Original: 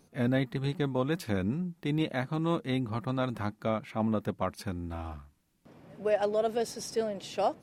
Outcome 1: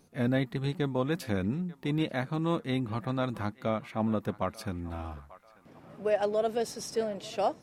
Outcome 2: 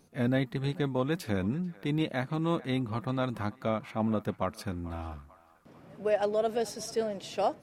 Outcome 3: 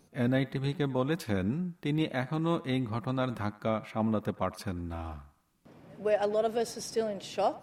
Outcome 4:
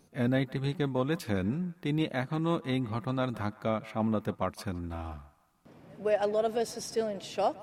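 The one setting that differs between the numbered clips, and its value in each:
band-passed feedback delay, time: 890 ms, 441 ms, 94 ms, 162 ms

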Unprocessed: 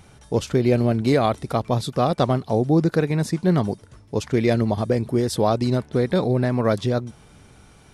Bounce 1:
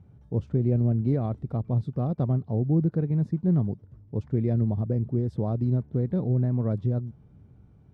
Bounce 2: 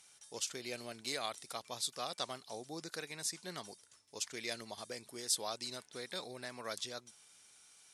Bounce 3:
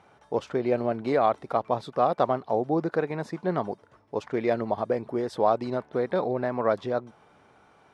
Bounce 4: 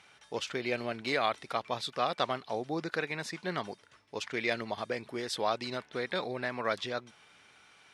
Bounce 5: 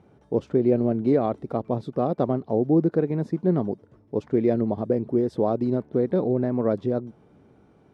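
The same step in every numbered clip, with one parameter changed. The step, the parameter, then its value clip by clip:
band-pass filter, frequency: 110 Hz, 7.9 kHz, 870 Hz, 2.4 kHz, 340 Hz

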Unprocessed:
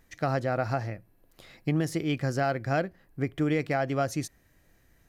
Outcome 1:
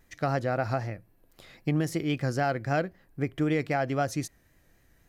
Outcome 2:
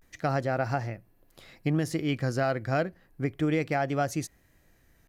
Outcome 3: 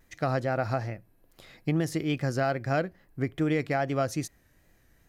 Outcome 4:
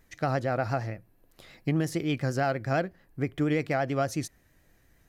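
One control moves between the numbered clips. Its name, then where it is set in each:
vibrato, rate: 3.8 Hz, 0.31 Hz, 2.4 Hz, 8.7 Hz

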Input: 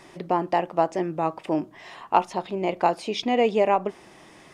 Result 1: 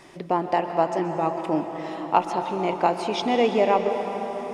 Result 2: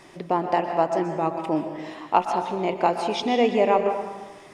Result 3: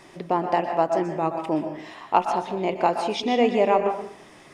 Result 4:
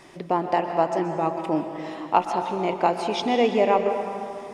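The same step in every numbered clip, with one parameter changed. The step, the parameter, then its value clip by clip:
plate-style reverb, RT60: 5.2 s, 1.2 s, 0.55 s, 2.5 s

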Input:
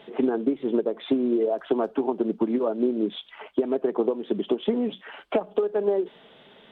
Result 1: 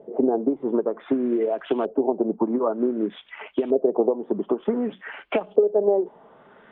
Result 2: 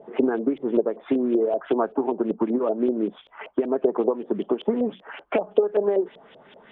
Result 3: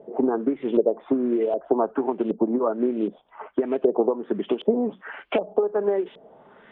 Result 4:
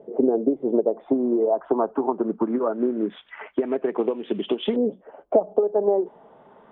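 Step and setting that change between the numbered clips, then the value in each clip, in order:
LFO low-pass, rate: 0.54 Hz, 5.2 Hz, 1.3 Hz, 0.21 Hz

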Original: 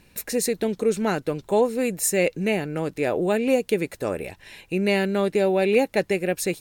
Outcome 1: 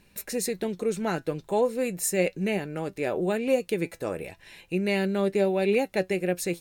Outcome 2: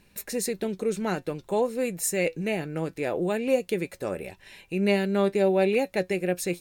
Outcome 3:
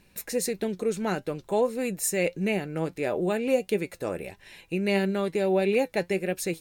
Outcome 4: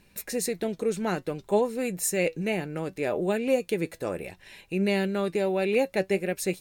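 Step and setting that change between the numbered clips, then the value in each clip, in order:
flange, rate: 0.36 Hz, 0.2 Hz, 1.6 Hz, 0.64 Hz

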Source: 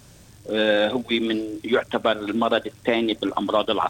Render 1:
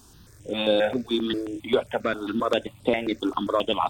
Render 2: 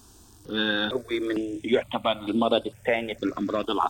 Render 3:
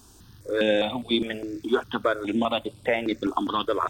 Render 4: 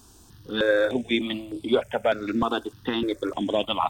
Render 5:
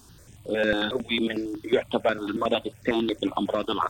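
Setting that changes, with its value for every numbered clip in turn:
stepped phaser, rate: 7.5 Hz, 2.2 Hz, 4.9 Hz, 3.3 Hz, 11 Hz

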